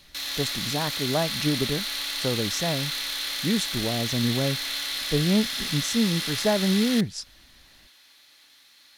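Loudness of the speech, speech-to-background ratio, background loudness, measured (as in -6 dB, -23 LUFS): -27.5 LUFS, 0.5 dB, -28.0 LUFS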